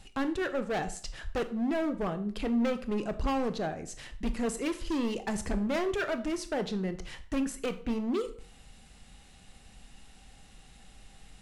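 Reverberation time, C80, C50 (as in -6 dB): 0.45 s, 17.5 dB, 14.0 dB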